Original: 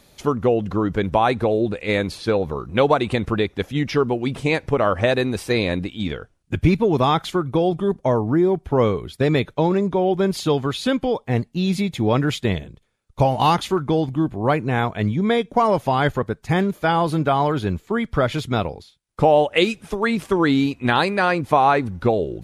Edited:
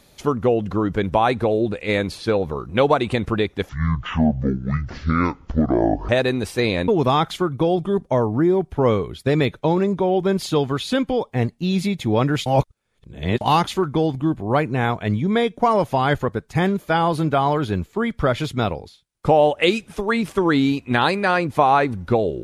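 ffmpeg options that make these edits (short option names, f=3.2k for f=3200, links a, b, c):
-filter_complex "[0:a]asplit=6[a][b][c][d][e][f];[a]atrim=end=3.694[g];[b]atrim=start=3.69:end=5.01,asetpts=PTS-STARTPTS,asetrate=24255,aresample=44100[h];[c]atrim=start=5.006:end=5.802[i];[d]atrim=start=6.818:end=12.402[j];[e]atrim=start=12.398:end=13.352,asetpts=PTS-STARTPTS,areverse[k];[f]atrim=start=13.348[l];[g][h]acrossfade=d=0.004:c1=hsin:c2=hsin[m];[m][i]acrossfade=d=0.004:c1=hsin:c2=hsin[n];[n][j]acrossfade=d=0.004:c1=hsin:c2=hsin[o];[o][k]acrossfade=d=0.004:c1=hsin:c2=hsin[p];[p][l]acrossfade=d=0.004:c1=hsin:c2=hsin"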